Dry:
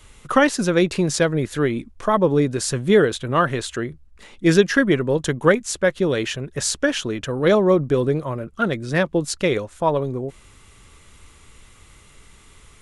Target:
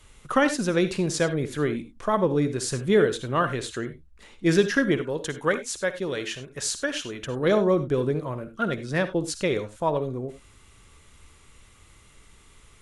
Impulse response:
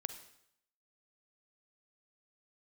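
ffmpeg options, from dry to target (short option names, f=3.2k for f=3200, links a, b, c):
-filter_complex "[0:a]asettb=1/sr,asplit=3[a][b][c];[a]atrim=end=4.974[d];[b]atrim=start=4.97:end=7.21,asetpts=PTS-STARTPTS,afade=t=in:d=0.004:c=qsin,afade=t=out:st=2.236:d=0.004:c=qsin,lowshelf=f=500:g=-7[e];[c]atrim=start=7.206[f];[d][e]acrossfade=d=0.004:c1=hsin:c2=qsin[g];[g][f]acrossfade=d=0.004:c1=qsin:c2=hsin[h];[1:a]atrim=start_sample=2205,atrim=end_sample=3969,asetrate=38367,aresample=44100[i];[h][i]afir=irnorm=-1:irlink=0,volume=-4dB"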